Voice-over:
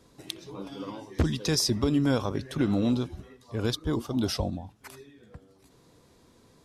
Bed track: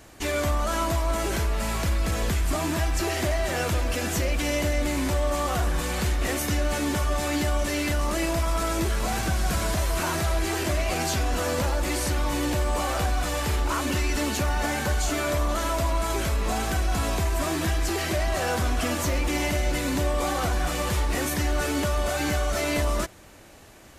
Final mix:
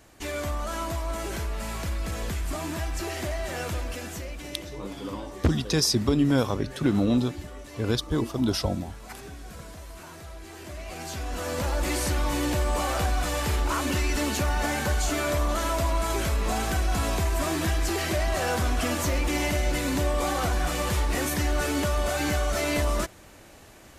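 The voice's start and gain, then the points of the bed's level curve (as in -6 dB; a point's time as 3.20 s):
4.25 s, +2.5 dB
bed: 3.79 s -5.5 dB
4.78 s -17.5 dB
10.44 s -17.5 dB
11.83 s -0.5 dB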